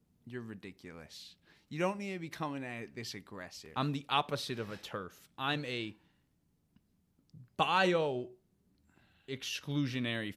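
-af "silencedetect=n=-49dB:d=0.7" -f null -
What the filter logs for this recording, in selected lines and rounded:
silence_start: 5.92
silence_end: 7.34 | silence_duration: 1.43
silence_start: 8.32
silence_end: 9.28 | silence_duration: 0.97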